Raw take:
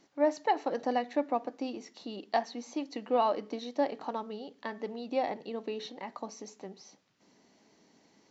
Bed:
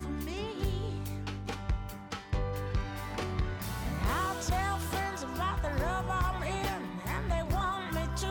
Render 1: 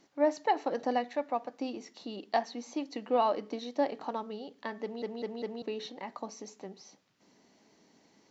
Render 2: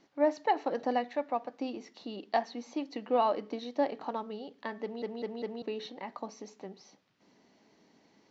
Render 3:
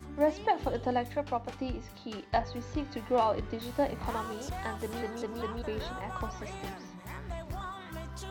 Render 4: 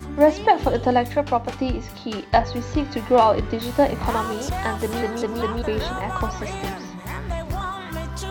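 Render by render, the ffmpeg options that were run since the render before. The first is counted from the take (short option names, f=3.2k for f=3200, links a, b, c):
-filter_complex "[0:a]asettb=1/sr,asplit=3[a][b][c];[a]atrim=end=1.084[d];[b]atrim=start=1.08:end=1.6,asetpts=PTS-STARTPTS,afade=t=in:d=0.004:c=qsin,afade=t=out:st=0.516:d=0.004:c=qsin,equalizer=f=320:w=1.5:g=-8.5[e];[c]atrim=start=1.596[f];[d][e]acrossfade=d=0.004:c1=hsin:c2=qsin[g];[g][f]acrossfade=d=0.004:c1=qsin:c2=hsin,asplit=5[h][i][j][k][l];[h]atrim=end=5.022[m];[i]atrim=start=4.818:end=5.022[n];[j]atrim=start=4.818:end=5.022[o];[k]atrim=start=4.818:end=5.022[p];[l]atrim=start=5.618[q];[m][n]acrossfade=d=0.004:c1=hsin:c2=hsin[r];[r][o]acrossfade=d=0.004:c1=hsin:c2=hsin[s];[s][p]acrossfade=d=0.004:c1=hsin:c2=hsin[t];[t][q]acrossfade=d=0.004:c1=hsin:c2=hsin"
-af "lowpass=4.9k"
-filter_complex "[1:a]volume=-8dB[a];[0:a][a]amix=inputs=2:normalize=0"
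-af "volume=11.5dB"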